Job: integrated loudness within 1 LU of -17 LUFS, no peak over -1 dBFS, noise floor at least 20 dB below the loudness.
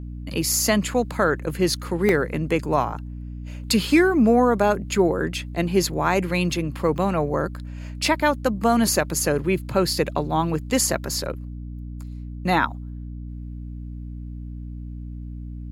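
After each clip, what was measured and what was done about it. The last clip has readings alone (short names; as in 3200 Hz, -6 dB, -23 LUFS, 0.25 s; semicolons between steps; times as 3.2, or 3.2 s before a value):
dropouts 2; longest dropout 1.4 ms; hum 60 Hz; harmonics up to 300 Hz; hum level -31 dBFS; loudness -22.0 LUFS; peak -6.0 dBFS; loudness target -17.0 LUFS
-> interpolate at 2.09/6.98, 1.4 ms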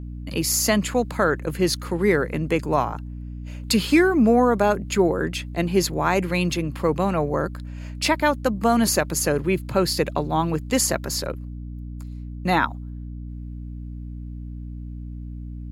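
dropouts 0; hum 60 Hz; harmonics up to 300 Hz; hum level -31 dBFS
-> de-hum 60 Hz, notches 5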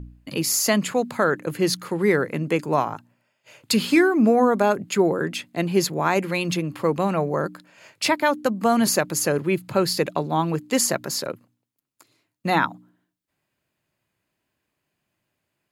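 hum none; loudness -22.5 LUFS; peak -5.5 dBFS; loudness target -17.0 LUFS
-> gain +5.5 dB; limiter -1 dBFS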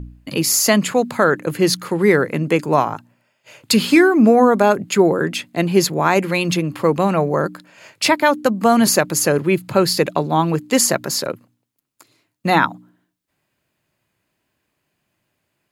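loudness -17.0 LUFS; peak -1.0 dBFS; noise floor -73 dBFS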